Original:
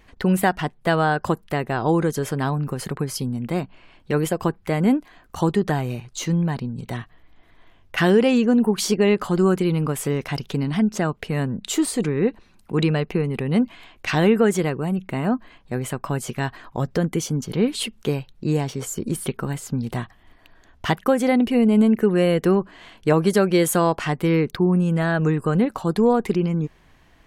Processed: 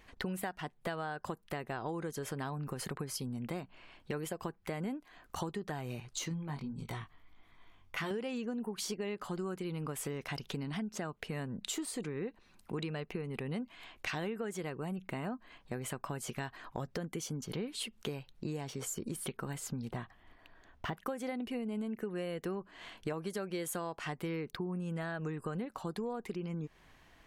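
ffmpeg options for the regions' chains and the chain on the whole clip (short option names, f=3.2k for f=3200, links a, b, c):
-filter_complex "[0:a]asettb=1/sr,asplit=3[a][b][c];[a]atrim=end=6.294[d];[b]atrim=start=6.29:end=8.11,asetpts=PTS-STARTPTS,afade=t=in:d=0.004:c=qsin,afade=t=out:st=1.816:d=0.004:c=qsin,aecho=1:1:0.9:0.36,atrim=end_sample=80262,flanger=delay=18.5:depth=2.7:speed=1.6[e];[c]atrim=start=8.106[f];[d][e]acrossfade=d=0.004:c1=hsin:c2=qsin[g];[g][f]acrossfade=d=0.004:c1=qsin:c2=hsin,asettb=1/sr,asplit=3[h][i][j];[h]atrim=end=19.894[k];[i]atrim=start=19.89:end=20.98,asetpts=PTS-STARTPTS,afade=t=in:d=0.004:c=qsin,afade=t=out:st=1.086:d=0.004:c=qsin,deesser=0.9,highshelf=f=4k:g=-9[l];[j]atrim=start=20.976[m];[k][l]acrossfade=d=0.004:c1=hsin:c2=qsin[n];[n][m]acrossfade=d=0.004:c1=qsin:c2=hsin,lowshelf=f=400:g=-5,acompressor=threshold=-32dB:ratio=6,volume=-4dB"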